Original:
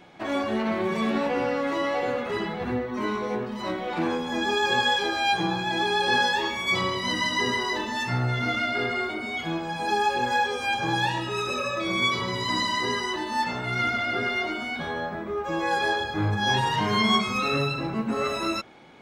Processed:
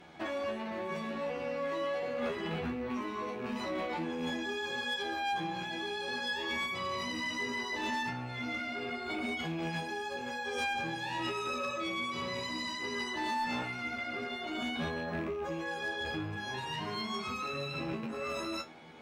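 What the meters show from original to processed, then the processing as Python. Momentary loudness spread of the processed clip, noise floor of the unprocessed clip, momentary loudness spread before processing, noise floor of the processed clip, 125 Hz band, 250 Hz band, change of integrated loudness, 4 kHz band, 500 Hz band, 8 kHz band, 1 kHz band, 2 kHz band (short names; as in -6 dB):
4 LU, -33 dBFS, 7 LU, -40 dBFS, -12.5 dB, -9.0 dB, -10.0 dB, -11.0 dB, -9.0 dB, -10.0 dB, -11.0 dB, -9.5 dB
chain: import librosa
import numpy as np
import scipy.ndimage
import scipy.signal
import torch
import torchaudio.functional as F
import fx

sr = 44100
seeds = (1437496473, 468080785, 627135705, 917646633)

p1 = fx.rattle_buzz(x, sr, strikes_db=-37.0, level_db=-33.0)
p2 = fx.over_compress(p1, sr, threshold_db=-32.0, ratio=-0.5)
p3 = p1 + F.gain(torch.from_numpy(p2), 2.5).numpy()
p4 = fx.comb_fb(p3, sr, f0_hz=80.0, decay_s=0.17, harmonics='all', damping=0.0, mix_pct=100)
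p5 = fx.clip_asym(p4, sr, top_db=-21.5, bottom_db=-19.0)
y = F.gain(torch.from_numpy(p5), -7.5).numpy()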